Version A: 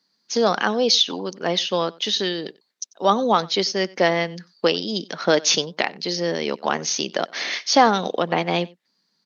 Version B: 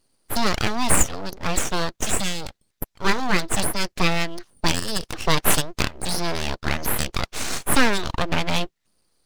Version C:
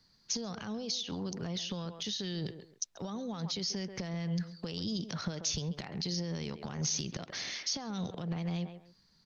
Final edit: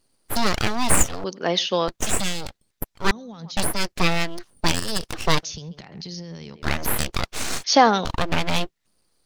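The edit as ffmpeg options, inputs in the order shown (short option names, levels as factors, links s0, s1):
-filter_complex "[0:a]asplit=2[s0][s1];[2:a]asplit=2[s2][s3];[1:a]asplit=5[s4][s5][s6][s7][s8];[s4]atrim=end=1.242[s9];[s0]atrim=start=1.238:end=1.882[s10];[s5]atrim=start=1.878:end=3.112[s11];[s2]atrim=start=3.108:end=3.572[s12];[s6]atrim=start=3.568:end=5.432[s13];[s3]atrim=start=5.428:end=6.622[s14];[s7]atrim=start=6.618:end=7.642[s15];[s1]atrim=start=7.638:end=8.052[s16];[s8]atrim=start=8.048[s17];[s9][s10]acrossfade=d=0.004:c1=hsin:c2=hsin[s18];[s18][s11]acrossfade=d=0.004:c1=hsin:c2=hsin[s19];[s19][s12]acrossfade=d=0.004:c1=hsin:c2=hsin[s20];[s20][s13]acrossfade=d=0.004:c1=hsin:c2=hsin[s21];[s21][s14]acrossfade=d=0.004:c1=hsin:c2=hsin[s22];[s22][s15]acrossfade=d=0.004:c1=hsin:c2=hsin[s23];[s23][s16]acrossfade=d=0.004:c1=hsin:c2=hsin[s24];[s24][s17]acrossfade=d=0.004:c1=hsin:c2=hsin"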